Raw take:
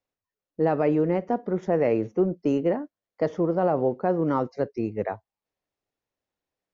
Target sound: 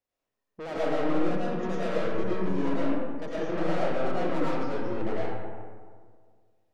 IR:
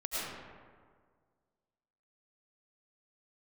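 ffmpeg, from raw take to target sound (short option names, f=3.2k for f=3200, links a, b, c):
-filter_complex "[0:a]aeval=exprs='(tanh(39.8*val(0)+0.2)-tanh(0.2))/39.8':c=same[a];[1:a]atrim=start_sample=2205[b];[a][b]afir=irnorm=-1:irlink=0"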